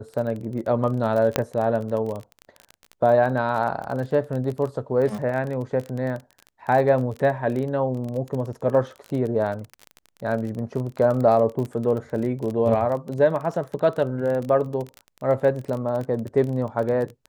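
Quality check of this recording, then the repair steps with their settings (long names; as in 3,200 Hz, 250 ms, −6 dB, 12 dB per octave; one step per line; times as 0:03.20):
surface crackle 26 per second −28 dBFS
0:01.36: click −4 dBFS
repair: click removal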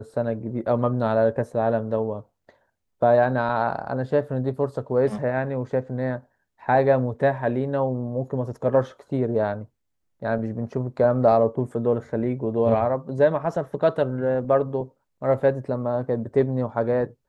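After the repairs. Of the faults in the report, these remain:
none of them is left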